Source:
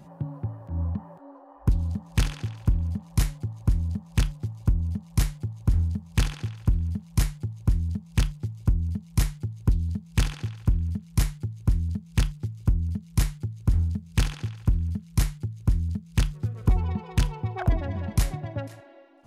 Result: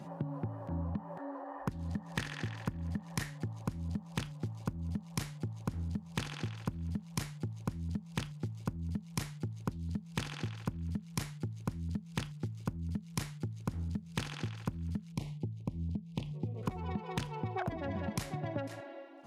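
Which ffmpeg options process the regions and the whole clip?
ffmpeg -i in.wav -filter_complex "[0:a]asettb=1/sr,asplit=3[link_01][link_02][link_03];[link_01]atrim=end=1.174[link_04];[link_02]atrim=start=1.17:end=3.45,asetpts=PTS-STARTPTS,afade=type=in:duration=0.004:curve=qsin,afade=type=out:start_time=2.276:duration=0.004:curve=qsin,equalizer=frequency=1800:width_type=o:width=0.31:gain=10.5,acompressor=mode=upward:threshold=-41dB:ratio=2.5:attack=3.2:release=140:knee=2.83:detection=peak[link_05];[link_03]atrim=start=3.446[link_06];[link_04][link_05]acrossfade=duration=0.004:curve1=hsin:curve2=qsin[link_07];[link_07][link_06]acrossfade=duration=0.004:curve1=qsin:curve2=hsin,asettb=1/sr,asplit=3[link_08][link_09][link_10];[link_08]atrim=end=15.124[link_11];[link_09]atrim=start=15.12:end=16.63,asetpts=PTS-STARTPTS,afade=type=in:duration=0.004:curve=qsin,afade=type=out:start_time=1.506:duration=0.004:curve=qsin,bass=frequency=250:gain=0,treble=frequency=4000:gain=-14,acompressor=threshold=-24dB:ratio=2.5:attack=3.2:release=140:knee=1:detection=peak,asuperstop=centerf=1500:order=4:qfactor=0.85[link_12];[link_10]atrim=start=16.626[link_13];[link_11][link_12]acrossfade=duration=0.004:curve1=hsin:curve2=qsin[link_14];[link_14][link_13]acrossfade=duration=0.004:curve1=qsin:curve2=hsin,highpass=150,highshelf=frequency=9100:gain=-10,acompressor=threshold=-36dB:ratio=10,volume=3.5dB" out.wav

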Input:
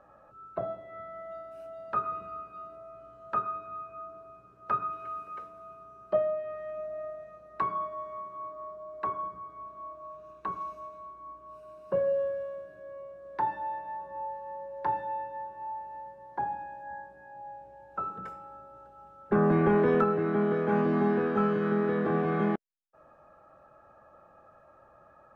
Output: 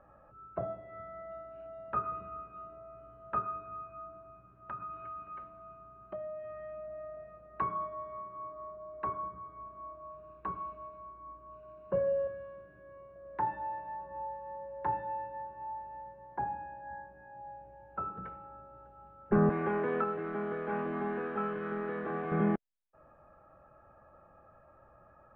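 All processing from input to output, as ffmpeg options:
ffmpeg -i in.wav -filter_complex "[0:a]asettb=1/sr,asplit=3[link_01][link_02][link_03];[link_01]atrim=end=3.884[link_04];[link_02]atrim=start=3.88:end=7.17,asetpts=PTS-STARTPTS,afade=type=in:duration=0.004:curve=qsin,afade=type=out:start_time=3.286:duration=0.004:curve=qsin,acompressor=threshold=-37dB:ratio=3:attack=3.2:release=140:knee=1:detection=peak,equalizer=frequency=450:width_type=o:width=0.21:gain=-14.5[link_05];[link_03]atrim=start=7.166[link_06];[link_04][link_05]acrossfade=duration=0.004:curve1=hsin:curve2=qsin[link_07];[link_07][link_06]acrossfade=duration=0.004:curve1=qsin:curve2=hsin,asettb=1/sr,asplit=3[link_08][link_09][link_10];[link_08]atrim=end=12.274[link_11];[link_09]atrim=start=12.27:end=13.16,asetpts=PTS-STARTPTS,afade=type=in:duration=0.004:curve=qsin,afade=type=out:start_time=0.886:duration=0.004:curve=qsin,equalizer=frequency=600:width=5.6:gain=-12,acompressor=mode=upward:threshold=-55dB:ratio=2.5:attack=3.2:release=140:knee=2.83:detection=peak[link_12];[link_10]atrim=start=13.156[link_13];[link_11][link_12]acrossfade=duration=0.004:curve1=hsin:curve2=qsin[link_14];[link_14][link_13]acrossfade=duration=0.004:curve1=qsin:curve2=hsin,asettb=1/sr,asplit=3[link_15][link_16][link_17];[link_15]atrim=end=19.494[link_18];[link_16]atrim=start=19.49:end=22.32,asetpts=PTS-STARTPTS,afade=type=in:duration=0.004:curve=qsin,afade=type=out:start_time=2.826:duration=0.004:curve=qsin,highpass=frequency=680:poles=1,aeval=exprs='sgn(val(0))*max(abs(val(0))-0.00188,0)':channel_layout=same[link_19];[link_17]atrim=start=22.316[link_20];[link_18][link_19]acrossfade=duration=0.004:curve1=hsin:curve2=qsin[link_21];[link_21][link_20]acrossfade=duration=0.004:curve1=qsin:curve2=hsin,lowpass=frequency=2800:width=0.5412,lowpass=frequency=2800:width=1.3066,lowshelf=frequency=130:gain=11,volume=-3.5dB" out.wav

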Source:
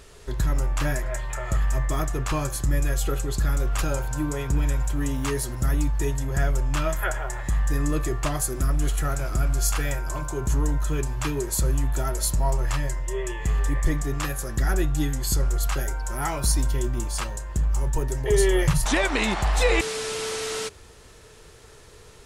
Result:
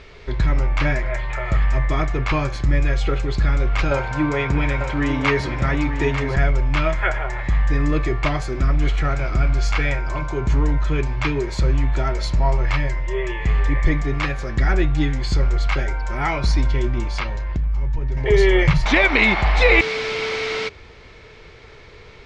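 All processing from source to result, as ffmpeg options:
ffmpeg -i in.wav -filter_complex "[0:a]asettb=1/sr,asplit=3[link_01][link_02][link_03];[link_01]atrim=end=3.914[link_04];[link_02]atrim=start=3.91:end=6.36,asetpts=PTS-STARTPTS,afade=type=in:duration=0.004:curve=qsin,afade=type=out:start_time=2.446:duration=0.004:curve=qsin,highpass=62,equalizer=frequency=1200:width=0.32:gain=5.5,aecho=1:1:896:0.355,atrim=end_sample=108045[link_05];[link_03]atrim=start=6.356[link_06];[link_04][link_05]acrossfade=duration=0.004:curve1=hsin:curve2=qsin[link_07];[link_07][link_06]acrossfade=duration=0.004:curve1=qsin:curve2=hsin,asettb=1/sr,asplit=3[link_08][link_09][link_10];[link_08]atrim=end=17.194[link_11];[link_09]atrim=start=17.19:end=18.17,asetpts=PTS-STARTPTS,afade=type=in:duration=0.004:curve=qsin,afade=type=out:start_time=0.976:duration=0.004:curve=qsin,lowpass=frequency=6000:width=0.5412,lowpass=frequency=6000:width=1.3066,asubboost=boost=6:cutoff=250,acompressor=threshold=-25dB:ratio=4:attack=3.2:release=140:knee=1:detection=peak[link_12];[link_10]atrim=start=18.166[link_13];[link_11][link_12]acrossfade=duration=0.004:curve1=hsin:curve2=qsin[link_14];[link_14][link_13]acrossfade=duration=0.004:curve1=qsin:curve2=hsin,lowpass=frequency=4600:width=0.5412,lowpass=frequency=4600:width=1.3066,equalizer=frequency=2200:width=7.2:gain=12.5,volume=5dB" out.wav

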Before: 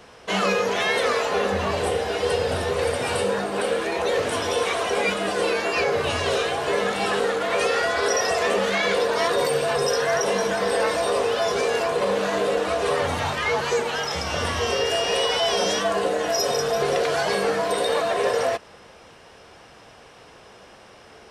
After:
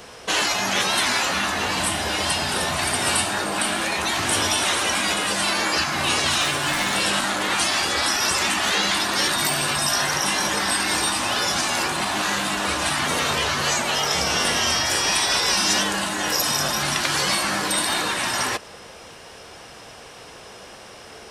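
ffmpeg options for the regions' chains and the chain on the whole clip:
ffmpeg -i in.wav -filter_complex "[0:a]asettb=1/sr,asplit=3[link_01][link_02][link_03];[link_01]atrim=end=6.414[link_04];[link_02]atrim=start=6.41:end=6.96,asetpts=PTS-STARTPTS,afade=type=in:duration=0.004:curve=qsin,afade=type=out:start_time=0.546:duration=0.004:curve=qsin,aecho=1:1:6.9:0.55,atrim=end_sample=24255,volume=19dB,asoftclip=hard,volume=-19dB[link_05];[link_03]atrim=start=6.956[link_06];[link_04][link_05]acrossfade=duration=0.004:curve1=hsin:curve2=qsin[link_07];[link_07][link_06]acrossfade=duration=0.004:curve1=qsin:curve2=hsin,afftfilt=real='re*lt(hypot(re,im),0.2)':imag='im*lt(hypot(re,im),0.2)':win_size=1024:overlap=0.75,highshelf=frequency=4600:gain=9.5,volume=4.5dB" out.wav

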